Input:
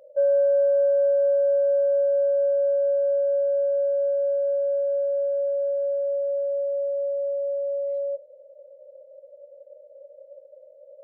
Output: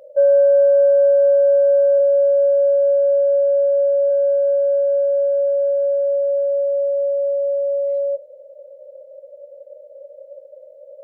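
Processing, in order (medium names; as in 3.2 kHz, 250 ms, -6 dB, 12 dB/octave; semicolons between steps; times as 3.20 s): 1.98–4.09 s: low-pass 1.1 kHz -> 1.2 kHz 12 dB/octave; trim +7 dB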